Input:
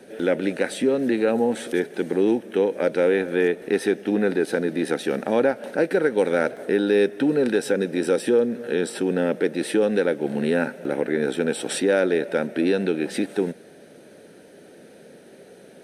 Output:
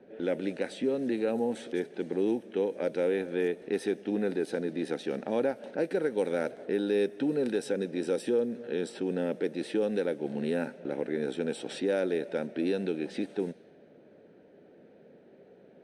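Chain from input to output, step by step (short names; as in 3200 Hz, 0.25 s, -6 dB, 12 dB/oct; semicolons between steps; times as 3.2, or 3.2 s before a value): low-pass opened by the level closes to 1900 Hz, open at -16 dBFS; bell 1500 Hz -5 dB 1.2 oct; gain -8 dB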